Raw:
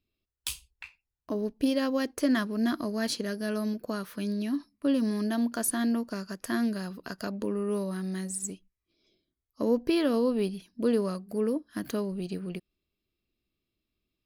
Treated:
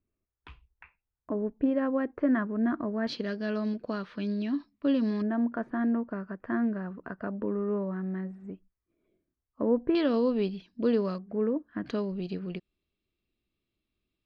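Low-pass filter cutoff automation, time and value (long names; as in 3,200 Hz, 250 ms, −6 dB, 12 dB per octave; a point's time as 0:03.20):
low-pass filter 24 dB per octave
1,800 Hz
from 0:03.07 4,000 Hz
from 0:05.22 1,800 Hz
from 0:09.95 4,400 Hz
from 0:11.18 2,100 Hz
from 0:11.86 4,400 Hz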